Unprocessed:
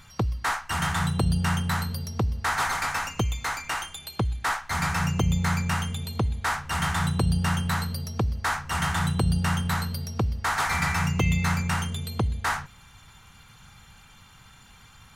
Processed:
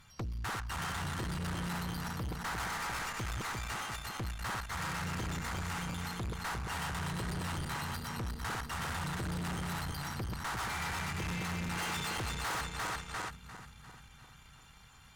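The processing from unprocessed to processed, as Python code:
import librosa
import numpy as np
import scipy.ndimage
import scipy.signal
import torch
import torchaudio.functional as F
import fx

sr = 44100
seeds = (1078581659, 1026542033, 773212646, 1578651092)

y = fx.reverse_delay_fb(x, sr, ms=174, feedback_pct=73, wet_db=-4.0)
y = fx.spec_box(y, sr, start_s=11.78, length_s=1.51, low_hz=300.0, high_hz=10000.0, gain_db=9)
y = fx.tube_stage(y, sr, drive_db=29.0, bias=0.65)
y = y * 10.0 ** (-5.5 / 20.0)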